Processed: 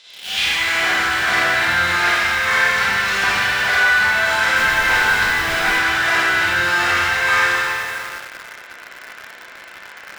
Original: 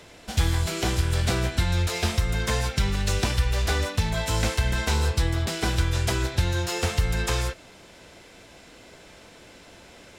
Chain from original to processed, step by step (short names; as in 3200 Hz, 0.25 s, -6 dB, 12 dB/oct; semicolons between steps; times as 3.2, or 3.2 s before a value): spectral swells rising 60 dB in 0.41 s; Schroeder reverb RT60 2.1 s, combs from 31 ms, DRR -9.5 dB; band-pass sweep 4000 Hz -> 1600 Hz, 0.03–0.94; de-hum 57.2 Hz, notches 11; in parallel at -11.5 dB: companded quantiser 2-bit; 4.55–5.78 on the sum: added noise pink -40 dBFS; gain +7.5 dB